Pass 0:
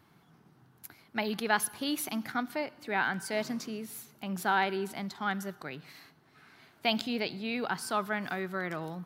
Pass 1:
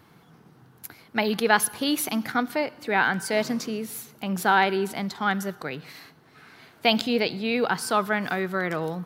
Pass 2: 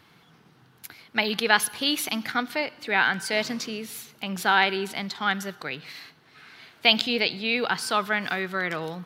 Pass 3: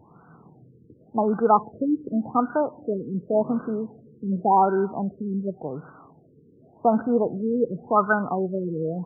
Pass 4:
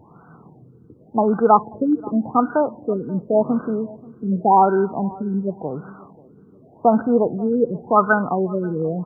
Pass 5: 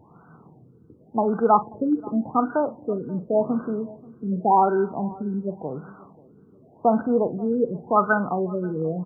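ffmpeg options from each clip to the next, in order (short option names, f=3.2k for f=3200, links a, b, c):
-af "equalizer=f=480:w=8:g=7,volume=7.5dB"
-af "equalizer=f=3.2k:t=o:w=2.2:g=10,volume=-4.5dB"
-af "afftfilt=real='re*lt(b*sr/1024,500*pow(1600/500,0.5+0.5*sin(2*PI*0.89*pts/sr)))':imag='im*lt(b*sr/1024,500*pow(1600/500,0.5+0.5*sin(2*PI*0.89*pts/sr)))':win_size=1024:overlap=0.75,volume=7dB"
-filter_complex "[0:a]asplit=2[a][b];[b]adelay=535,lowpass=f=1.1k:p=1,volume=-21.5dB,asplit=2[c][d];[d]adelay=535,lowpass=f=1.1k:p=1,volume=0.34[e];[a][c][e]amix=inputs=3:normalize=0,volume=4.5dB"
-filter_complex "[0:a]asplit=2[a][b];[b]adelay=44,volume=-13dB[c];[a][c]amix=inputs=2:normalize=0,volume=-4dB"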